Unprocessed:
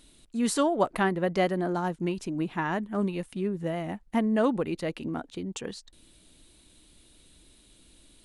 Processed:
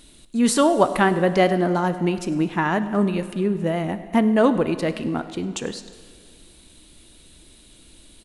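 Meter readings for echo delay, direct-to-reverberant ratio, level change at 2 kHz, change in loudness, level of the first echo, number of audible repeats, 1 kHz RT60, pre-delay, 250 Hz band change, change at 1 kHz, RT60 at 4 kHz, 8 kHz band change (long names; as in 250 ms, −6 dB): 100 ms, 11.0 dB, +8.0 dB, +7.5 dB, −20.5 dB, 1, 2.1 s, 6 ms, +7.5 dB, +8.0 dB, 2.0 s, +8.0 dB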